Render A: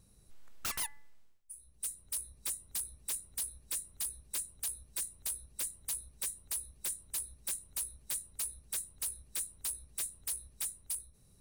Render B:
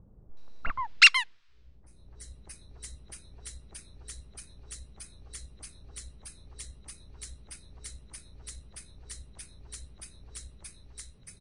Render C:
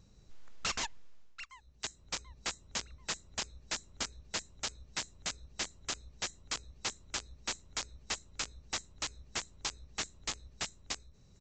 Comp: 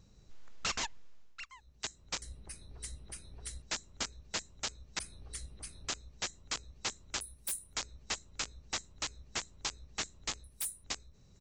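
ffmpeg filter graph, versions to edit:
-filter_complex "[1:a]asplit=2[a][b];[0:a]asplit=2[c][d];[2:a]asplit=5[e][f][g][h][i];[e]atrim=end=2.222[j];[a]atrim=start=2.218:end=3.622[k];[f]atrim=start=3.618:end=4.992[l];[b]atrim=start=4.988:end=5.882[m];[g]atrim=start=5.878:end=7.212[n];[c]atrim=start=7.208:end=7.742[o];[h]atrim=start=7.738:end=10.442[p];[d]atrim=start=10.438:end=10.842[q];[i]atrim=start=10.838[r];[j][k]acrossfade=d=0.004:c1=hsin:c2=hsin[s];[s][l]acrossfade=d=0.004:c1=hsin:c2=hsin[t];[t][m]acrossfade=d=0.004:c1=hsin:c2=hsin[u];[u][n]acrossfade=d=0.004:c1=hsin:c2=hsin[v];[v][o]acrossfade=d=0.004:c1=hsin:c2=hsin[w];[w][p]acrossfade=d=0.004:c1=hsin:c2=hsin[x];[x][q]acrossfade=d=0.004:c1=hsin:c2=hsin[y];[y][r]acrossfade=d=0.004:c1=hsin:c2=hsin"

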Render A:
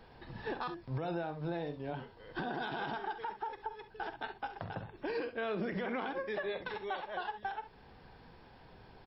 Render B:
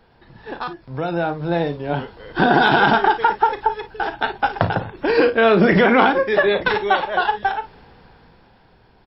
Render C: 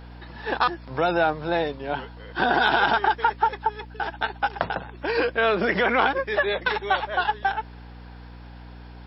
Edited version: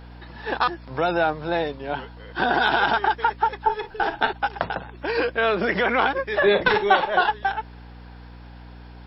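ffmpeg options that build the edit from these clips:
-filter_complex "[1:a]asplit=2[a][b];[2:a]asplit=3[c][d][e];[c]atrim=end=3.672[f];[a]atrim=start=3.668:end=4.332[g];[d]atrim=start=4.328:end=6.422[h];[b]atrim=start=6.418:end=7.292[i];[e]atrim=start=7.288[j];[f][g]acrossfade=d=0.004:c1=hsin:c2=hsin[k];[k][h]acrossfade=d=0.004:c1=hsin:c2=hsin[l];[l][i]acrossfade=d=0.004:c1=hsin:c2=hsin[m];[m][j]acrossfade=d=0.004:c1=hsin:c2=hsin"

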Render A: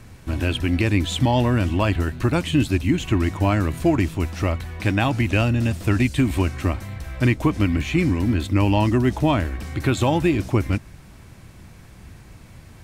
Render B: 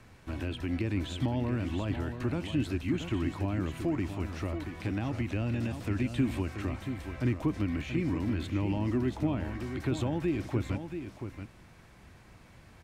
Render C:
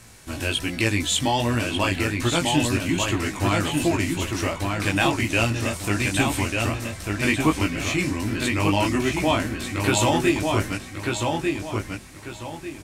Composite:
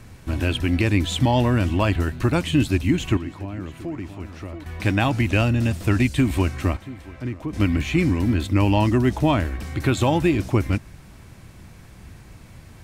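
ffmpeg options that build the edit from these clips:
-filter_complex "[1:a]asplit=2[a][b];[0:a]asplit=3[c][d][e];[c]atrim=end=3.172[f];[a]atrim=start=3.168:end=4.662[g];[d]atrim=start=4.658:end=6.772[h];[b]atrim=start=6.768:end=7.532[i];[e]atrim=start=7.528[j];[f][g]acrossfade=d=0.004:c1=hsin:c2=hsin[k];[k][h]acrossfade=d=0.004:c1=hsin:c2=hsin[l];[l][i]acrossfade=d=0.004:c1=hsin:c2=hsin[m];[m][j]acrossfade=d=0.004:c1=hsin:c2=hsin"

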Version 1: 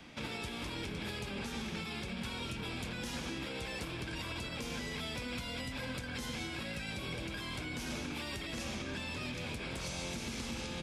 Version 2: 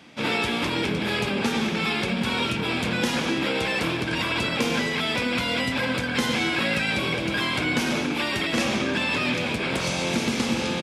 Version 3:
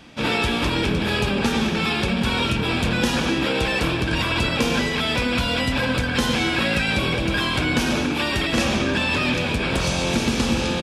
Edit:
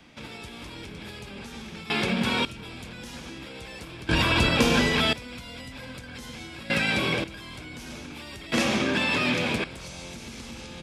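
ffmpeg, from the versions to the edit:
-filter_complex "[1:a]asplit=3[a][b][c];[0:a]asplit=5[d][e][f][g][h];[d]atrim=end=1.902[i];[a]atrim=start=1.898:end=2.452[j];[e]atrim=start=2.448:end=4.092[k];[2:a]atrim=start=4.088:end=5.132[l];[f]atrim=start=5.128:end=6.702[m];[b]atrim=start=6.698:end=7.242[n];[g]atrim=start=7.238:end=8.522[o];[c]atrim=start=8.518:end=9.642[p];[h]atrim=start=9.638[q];[i][j]acrossfade=d=0.004:c1=hsin:c2=hsin[r];[r][k]acrossfade=d=0.004:c1=hsin:c2=hsin[s];[s][l]acrossfade=d=0.004:c1=hsin:c2=hsin[t];[t][m]acrossfade=d=0.004:c1=hsin:c2=hsin[u];[u][n]acrossfade=d=0.004:c1=hsin:c2=hsin[v];[v][o]acrossfade=d=0.004:c1=hsin:c2=hsin[w];[w][p]acrossfade=d=0.004:c1=hsin:c2=hsin[x];[x][q]acrossfade=d=0.004:c1=hsin:c2=hsin"

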